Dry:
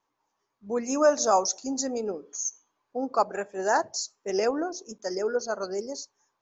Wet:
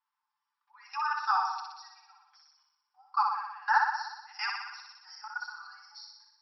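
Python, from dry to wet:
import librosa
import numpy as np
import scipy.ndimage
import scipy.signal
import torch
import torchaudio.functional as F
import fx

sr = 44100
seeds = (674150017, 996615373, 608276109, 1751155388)

p1 = fx.peak_eq(x, sr, hz=1400.0, db=5.0, octaves=0.63)
p2 = p1 + 0.86 * np.pad(p1, (int(6.8 * sr / 1000.0), 0))[:len(p1)]
p3 = fx.level_steps(p2, sr, step_db=22)
p4 = fx.brickwall_bandpass(p3, sr, low_hz=770.0, high_hz=5700.0)
y = p4 + fx.room_flutter(p4, sr, wall_m=10.4, rt60_s=1.0, dry=0)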